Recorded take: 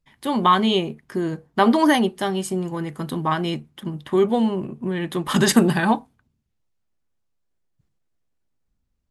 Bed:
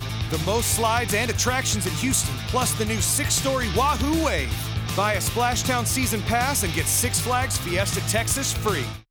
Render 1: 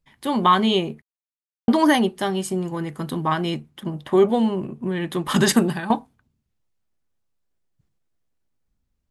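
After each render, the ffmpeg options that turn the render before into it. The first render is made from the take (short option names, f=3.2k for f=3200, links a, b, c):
-filter_complex "[0:a]asettb=1/sr,asplit=3[a][b][c];[a]atrim=end=3.854[d];[b]atrim=start=3.85:end=4.31,asetpts=PTS-STARTPTS,afade=t=in:d=0.004:c=qsin,afade=t=out:st=0.456:d=0.004:c=qsin,equalizer=f=650:w=1.5:g=7.5[e];[c]atrim=start=4.306[f];[d][e]acrossfade=d=0.004:c1=hsin:c2=qsin[g];[g][f]acrossfade=d=0.004:c1=qsin:c2=hsin,asplit=4[h][i][j][k];[h]atrim=end=1.02,asetpts=PTS-STARTPTS,afade=t=out:st=1.016:d=0.004:c=hsin[l];[i]atrim=start=1.02:end=1.68,asetpts=PTS-STARTPTS,volume=0[m];[j]atrim=start=1.68:end=5.9,asetpts=PTS-STARTPTS,afade=t=in:d=0.004:c=hsin,afade=t=out:st=3.78:d=0.44:silence=0.237137[n];[k]atrim=start=5.9,asetpts=PTS-STARTPTS,afade=t=in:d=0.004:c=hsin:silence=0.237137[o];[l][m][n][o]concat=n=4:v=0:a=1"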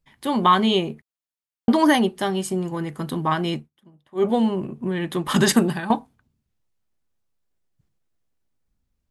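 -filter_complex "[0:a]asplit=3[a][b][c];[a]atrim=end=3.7,asetpts=PTS-STARTPTS,afade=t=out:st=3.58:d=0.12:silence=0.0668344[d];[b]atrim=start=3.7:end=4.15,asetpts=PTS-STARTPTS,volume=-23.5dB[e];[c]atrim=start=4.15,asetpts=PTS-STARTPTS,afade=t=in:d=0.12:silence=0.0668344[f];[d][e][f]concat=n=3:v=0:a=1"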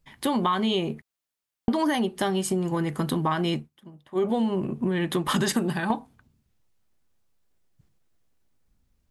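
-filter_complex "[0:a]asplit=2[a][b];[b]alimiter=limit=-15.5dB:level=0:latency=1:release=71,volume=-1dB[c];[a][c]amix=inputs=2:normalize=0,acompressor=threshold=-23dB:ratio=4"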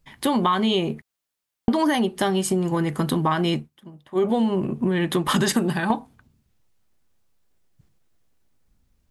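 -af "volume=3.5dB"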